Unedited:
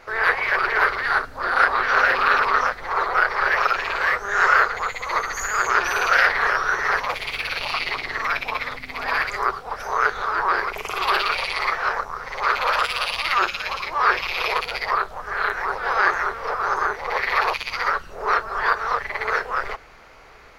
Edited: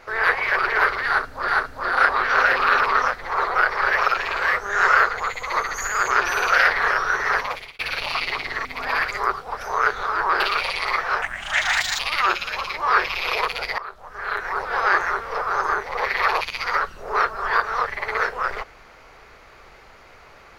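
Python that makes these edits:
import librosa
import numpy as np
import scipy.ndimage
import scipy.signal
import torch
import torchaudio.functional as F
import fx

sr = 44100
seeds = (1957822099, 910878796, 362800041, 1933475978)

y = fx.edit(x, sr, fx.repeat(start_s=1.07, length_s=0.41, count=2),
    fx.fade_out_span(start_s=7.0, length_s=0.38),
    fx.cut(start_s=8.24, length_s=0.6),
    fx.cut(start_s=10.59, length_s=0.55),
    fx.speed_span(start_s=11.96, length_s=1.16, speed=1.5),
    fx.fade_in_from(start_s=14.91, length_s=0.86, floor_db=-16.5), tone=tone)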